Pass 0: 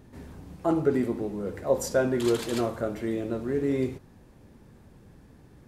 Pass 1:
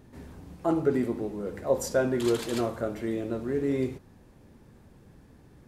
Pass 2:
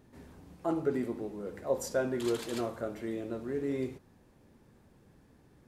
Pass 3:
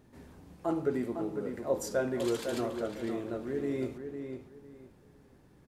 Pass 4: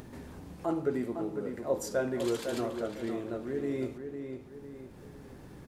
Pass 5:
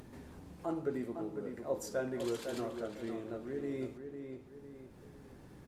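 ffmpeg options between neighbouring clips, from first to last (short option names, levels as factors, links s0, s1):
-af "bandreject=f=50.03:t=h:w=4,bandreject=f=100.06:t=h:w=4,bandreject=f=150.09:t=h:w=4,bandreject=f=200.12:t=h:w=4,volume=0.891"
-af "lowshelf=f=140:g=-5,volume=0.562"
-filter_complex "[0:a]asplit=2[s0][s1];[s1]adelay=504,lowpass=f=3600:p=1,volume=0.447,asplit=2[s2][s3];[s3]adelay=504,lowpass=f=3600:p=1,volume=0.25,asplit=2[s4][s5];[s5]adelay=504,lowpass=f=3600:p=1,volume=0.25[s6];[s0][s2][s4][s6]amix=inputs=4:normalize=0"
-af "acompressor=mode=upward:threshold=0.0141:ratio=2.5"
-af "volume=0.531" -ar 48000 -c:a libopus -b:a 48k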